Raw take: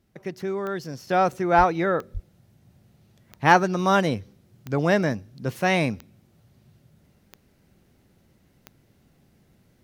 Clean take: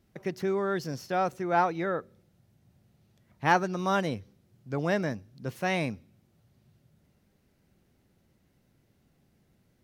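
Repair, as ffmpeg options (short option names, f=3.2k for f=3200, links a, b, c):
-filter_complex "[0:a]adeclick=t=4,asplit=3[a][b][c];[a]afade=t=out:st=1.57:d=0.02[d];[b]highpass=f=140:w=0.5412,highpass=f=140:w=1.3066,afade=t=in:st=1.57:d=0.02,afade=t=out:st=1.69:d=0.02[e];[c]afade=t=in:st=1.69:d=0.02[f];[d][e][f]amix=inputs=3:normalize=0,asplit=3[g][h][i];[g]afade=t=out:st=2.13:d=0.02[j];[h]highpass=f=140:w=0.5412,highpass=f=140:w=1.3066,afade=t=in:st=2.13:d=0.02,afade=t=out:st=2.25:d=0.02[k];[i]afade=t=in:st=2.25:d=0.02[l];[j][k][l]amix=inputs=3:normalize=0,asetnsamples=n=441:p=0,asendcmd='1.07 volume volume -7dB',volume=0dB"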